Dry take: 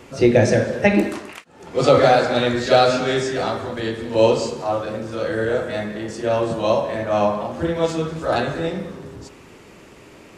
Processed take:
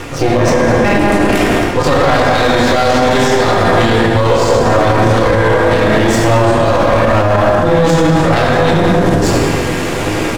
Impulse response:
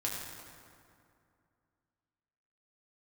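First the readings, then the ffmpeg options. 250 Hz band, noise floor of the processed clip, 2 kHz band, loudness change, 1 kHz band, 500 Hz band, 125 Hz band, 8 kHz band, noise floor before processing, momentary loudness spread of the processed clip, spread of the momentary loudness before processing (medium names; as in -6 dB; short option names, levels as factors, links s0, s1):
+10.0 dB, -16 dBFS, +11.5 dB, +8.5 dB, +10.5 dB, +7.5 dB, +13.0 dB, +12.0 dB, -45 dBFS, 2 LU, 12 LU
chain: -filter_complex "[0:a]asplit=2[s0][s1];[s1]adelay=195,lowpass=f=850:p=1,volume=0.562,asplit=2[s2][s3];[s3]adelay=195,lowpass=f=850:p=1,volume=0.29,asplit=2[s4][s5];[s5]adelay=195,lowpass=f=850:p=1,volume=0.29,asplit=2[s6][s7];[s7]adelay=195,lowpass=f=850:p=1,volume=0.29[s8];[s0][s2][s4][s6][s8]amix=inputs=5:normalize=0,aeval=exprs='max(val(0),0)':c=same,areverse,acompressor=threshold=0.0316:ratio=8,areverse[s9];[1:a]atrim=start_sample=2205,afade=t=out:st=0.4:d=0.01,atrim=end_sample=18081[s10];[s9][s10]afir=irnorm=-1:irlink=0,alimiter=level_in=28.2:limit=0.891:release=50:level=0:latency=1,volume=0.891"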